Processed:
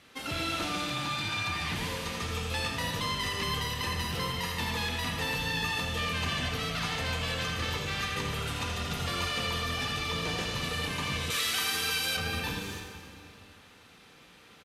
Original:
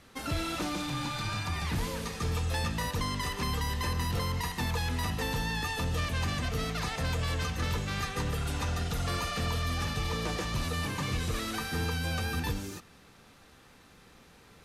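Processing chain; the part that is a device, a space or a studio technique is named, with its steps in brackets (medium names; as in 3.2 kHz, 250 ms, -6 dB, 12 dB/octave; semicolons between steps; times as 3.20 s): PA in a hall (high-pass 120 Hz 6 dB/octave; peaking EQ 2.9 kHz +7 dB 1.1 oct; delay 83 ms -8 dB; reverberation RT60 2.5 s, pre-delay 23 ms, DRR 3 dB); 11.30–12.17 s: tilt EQ +3 dB/octave; trim -2.5 dB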